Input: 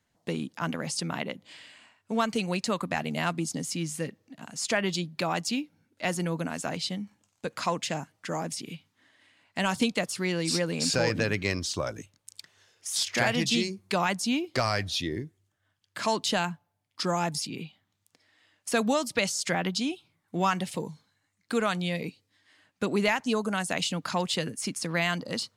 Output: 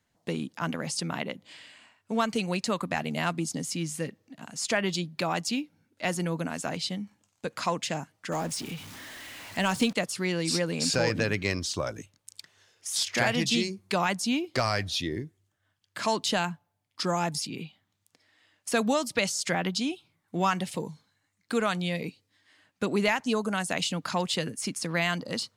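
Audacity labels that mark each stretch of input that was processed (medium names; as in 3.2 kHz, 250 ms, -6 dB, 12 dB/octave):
8.320000	9.930000	jump at every zero crossing of -38.5 dBFS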